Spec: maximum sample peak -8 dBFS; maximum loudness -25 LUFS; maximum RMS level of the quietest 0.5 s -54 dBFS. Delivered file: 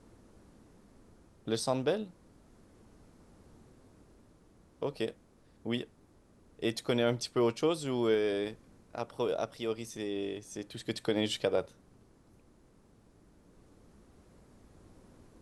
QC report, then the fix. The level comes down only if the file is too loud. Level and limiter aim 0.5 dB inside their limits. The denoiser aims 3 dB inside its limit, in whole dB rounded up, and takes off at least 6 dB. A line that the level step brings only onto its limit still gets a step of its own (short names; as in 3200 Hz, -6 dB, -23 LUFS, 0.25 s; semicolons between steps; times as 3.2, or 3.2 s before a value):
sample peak -16.0 dBFS: OK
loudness -33.5 LUFS: OK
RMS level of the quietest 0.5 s -62 dBFS: OK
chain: none